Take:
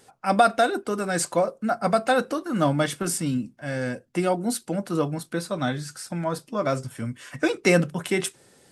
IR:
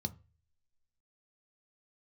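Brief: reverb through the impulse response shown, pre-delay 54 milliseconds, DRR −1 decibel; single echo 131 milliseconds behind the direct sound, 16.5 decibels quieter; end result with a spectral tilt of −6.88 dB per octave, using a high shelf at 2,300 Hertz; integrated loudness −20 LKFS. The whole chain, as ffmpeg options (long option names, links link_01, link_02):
-filter_complex "[0:a]highshelf=frequency=2300:gain=-9,aecho=1:1:131:0.15,asplit=2[link_01][link_02];[1:a]atrim=start_sample=2205,adelay=54[link_03];[link_02][link_03]afir=irnorm=-1:irlink=0,volume=1.5dB[link_04];[link_01][link_04]amix=inputs=2:normalize=0,volume=-2.5dB"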